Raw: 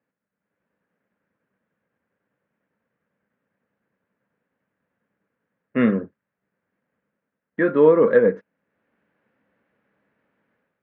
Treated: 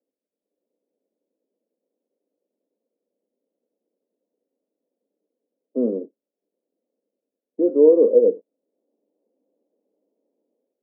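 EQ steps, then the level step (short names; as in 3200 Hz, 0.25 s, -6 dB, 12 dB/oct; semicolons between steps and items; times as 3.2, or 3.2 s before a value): steep high-pass 270 Hz 36 dB/oct; inverse Chebyshev low-pass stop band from 1500 Hz, stop band 50 dB; +2.0 dB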